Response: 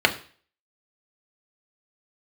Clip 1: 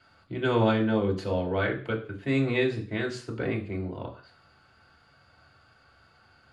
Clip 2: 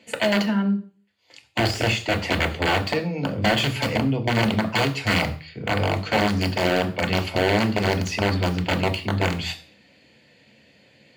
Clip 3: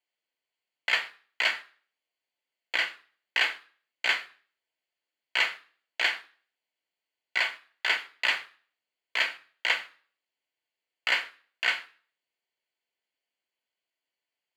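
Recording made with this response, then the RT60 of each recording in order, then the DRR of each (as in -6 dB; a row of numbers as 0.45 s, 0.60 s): 2; 0.40 s, 0.40 s, 0.40 s; -1.0 dB, 3.5 dB, 9.0 dB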